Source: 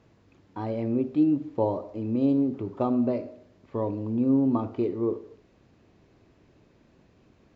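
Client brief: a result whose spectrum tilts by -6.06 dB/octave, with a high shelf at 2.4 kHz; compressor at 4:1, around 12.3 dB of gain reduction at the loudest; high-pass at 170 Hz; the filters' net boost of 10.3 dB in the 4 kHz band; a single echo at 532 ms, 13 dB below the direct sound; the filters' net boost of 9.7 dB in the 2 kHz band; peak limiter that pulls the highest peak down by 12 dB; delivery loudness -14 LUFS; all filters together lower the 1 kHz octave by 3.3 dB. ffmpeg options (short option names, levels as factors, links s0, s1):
-af "highpass=170,equalizer=f=1000:t=o:g=-7.5,equalizer=f=2000:t=o:g=8.5,highshelf=f=2400:g=8,equalizer=f=4000:t=o:g=3.5,acompressor=threshold=0.02:ratio=4,alimiter=level_in=2.82:limit=0.0631:level=0:latency=1,volume=0.355,aecho=1:1:532:0.224,volume=25.1"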